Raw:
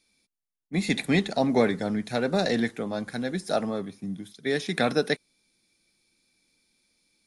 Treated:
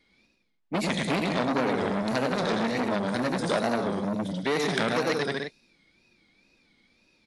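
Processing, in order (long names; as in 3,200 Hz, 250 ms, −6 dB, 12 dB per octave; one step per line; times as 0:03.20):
bouncing-ball delay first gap 100 ms, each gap 0.8×, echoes 5
downward compressor 4 to 1, threshold −28 dBFS, peak gain reduction 11 dB
low-pass that shuts in the quiet parts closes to 2,900 Hz, open at −25.5 dBFS
tape wow and flutter 130 cents
saturating transformer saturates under 1,600 Hz
level +8 dB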